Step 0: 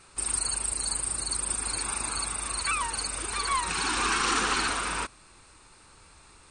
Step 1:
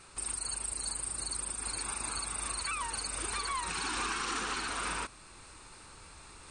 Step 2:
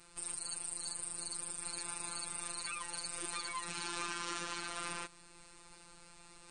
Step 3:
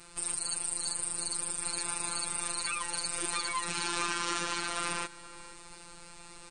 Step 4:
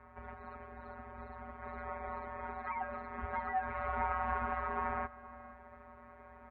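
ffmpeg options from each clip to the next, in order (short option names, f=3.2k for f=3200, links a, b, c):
-af "alimiter=level_in=0.5dB:limit=-24dB:level=0:latency=1:release=468,volume=-0.5dB,areverse,acompressor=mode=upward:threshold=-46dB:ratio=2.5,areverse"
-af "equalizer=f=1.3k:w=1.5:g=-2.5,afftfilt=real='hypot(re,im)*cos(PI*b)':imag='0':win_size=1024:overlap=0.75,volume=-1.5dB"
-filter_complex "[0:a]asplit=2[a][b];[b]adelay=472.3,volume=-16dB,highshelf=f=4k:g=-10.6[c];[a][c]amix=inputs=2:normalize=0,volume=7.5dB"
-af "asubboost=boost=11:cutoff=54,highpass=f=200:t=q:w=0.5412,highpass=f=200:t=q:w=1.307,lowpass=f=2k:t=q:w=0.5176,lowpass=f=2k:t=q:w=0.7071,lowpass=f=2k:t=q:w=1.932,afreqshift=-280,volume=1dB"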